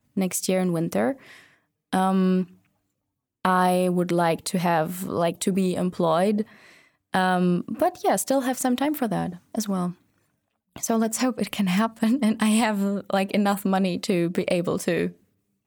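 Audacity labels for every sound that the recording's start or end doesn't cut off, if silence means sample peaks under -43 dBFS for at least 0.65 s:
3.450000	9.940000	sound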